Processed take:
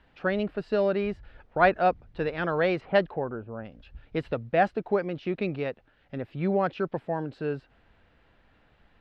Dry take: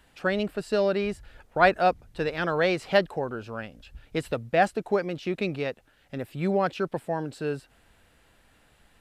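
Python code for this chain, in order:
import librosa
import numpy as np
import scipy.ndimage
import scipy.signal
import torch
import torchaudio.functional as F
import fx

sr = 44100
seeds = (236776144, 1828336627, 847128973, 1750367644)

y = fx.env_lowpass(x, sr, base_hz=400.0, full_db=-18.0, at=(2.8, 3.64), fade=0.02)
y = fx.air_absorb(y, sr, metres=260.0)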